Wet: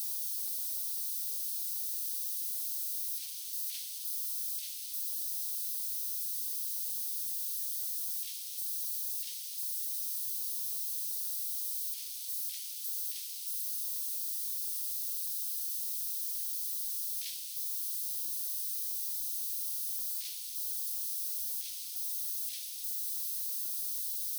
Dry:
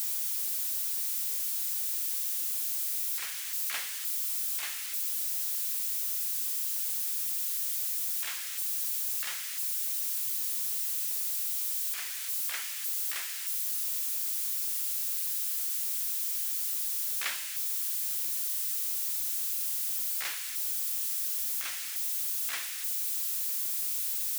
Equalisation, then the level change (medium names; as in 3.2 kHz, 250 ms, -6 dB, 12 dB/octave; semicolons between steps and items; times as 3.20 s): inverse Chebyshev band-stop 180–830 Hz, stop band 80 dB; treble shelf 2.5 kHz -8.5 dB; band-stop 7.2 kHz, Q 6.2; +4.5 dB